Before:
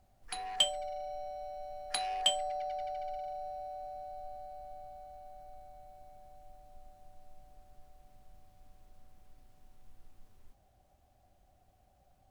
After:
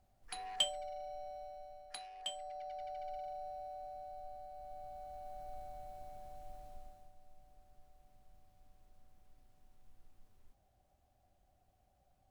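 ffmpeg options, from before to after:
-af "volume=16dB,afade=t=out:st=1.36:d=0.76:silence=0.251189,afade=t=in:st=2.12:d=1.06:silence=0.223872,afade=t=in:st=4.52:d=1.06:silence=0.398107,afade=t=out:st=6.64:d=0.49:silence=0.316228"

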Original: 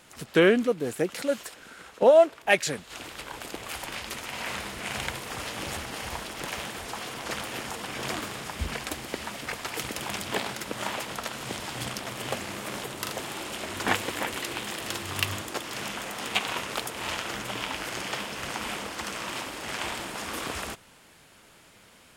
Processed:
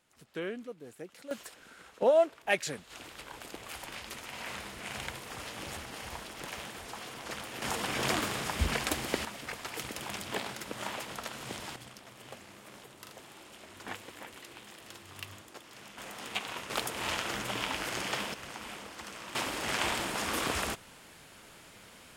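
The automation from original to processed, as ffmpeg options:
-af "asetnsamples=n=441:p=0,asendcmd='1.31 volume volume -7dB;7.62 volume volume 2dB;9.25 volume volume -6dB;11.76 volume volume -16dB;15.98 volume volume -8.5dB;16.7 volume volume -1.5dB;18.34 volume volume -10dB;19.35 volume volume 1.5dB',volume=-18dB"

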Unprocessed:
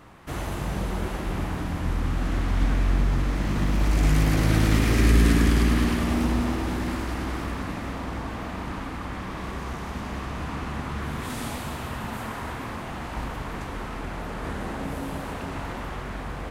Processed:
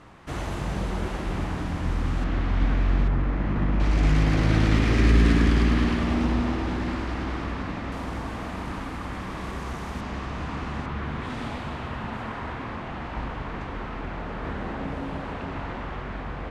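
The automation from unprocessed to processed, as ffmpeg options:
-af "asetnsamples=n=441:p=0,asendcmd='2.24 lowpass f 3900;3.08 lowpass f 2100;3.8 lowpass f 4700;7.92 lowpass f 12000;10.01 lowpass f 6100;10.86 lowpass f 3500',lowpass=8k"

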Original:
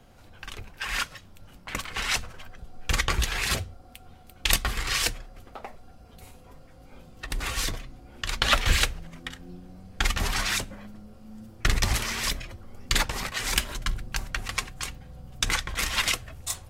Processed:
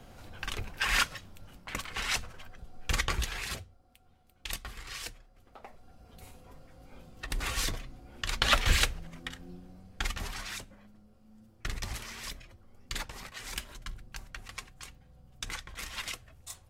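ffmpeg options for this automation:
-af "volume=15dB,afade=t=out:st=0.82:d=0.91:silence=0.421697,afade=t=out:st=3.01:d=0.67:silence=0.298538,afade=t=in:st=5.36:d=0.85:silence=0.251189,afade=t=out:st=9.38:d=1:silence=0.316228"

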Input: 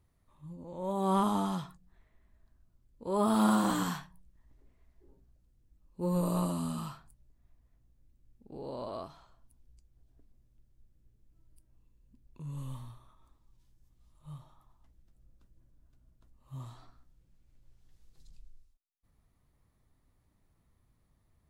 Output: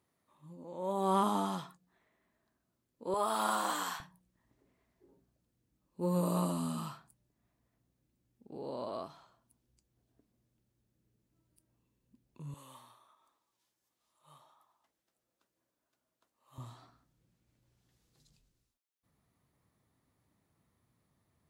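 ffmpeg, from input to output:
-af "asetnsamples=n=441:p=0,asendcmd='3.14 highpass f 610;4 highpass f 150;12.54 highpass f 520;16.58 highpass f 120',highpass=230"

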